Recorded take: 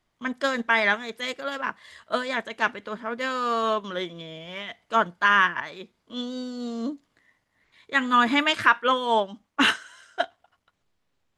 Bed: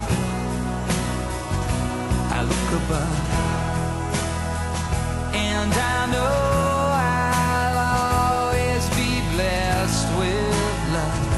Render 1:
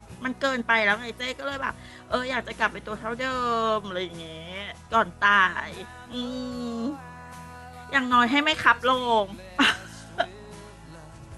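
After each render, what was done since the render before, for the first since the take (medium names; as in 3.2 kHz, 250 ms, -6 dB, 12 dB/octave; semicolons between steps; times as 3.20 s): add bed -22 dB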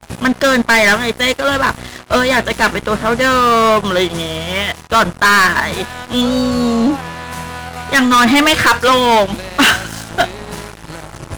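waveshaping leveller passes 5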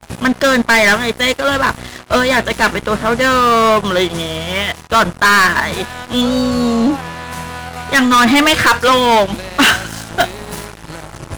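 10.20–10.66 s: treble shelf 11 kHz +11 dB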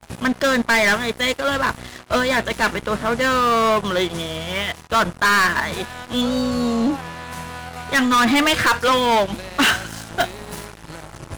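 trim -6 dB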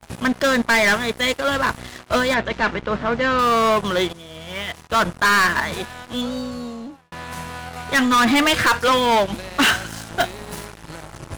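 2.34–3.39 s: distance through air 150 m; 4.13–5.05 s: fade in, from -17.5 dB; 5.59–7.12 s: fade out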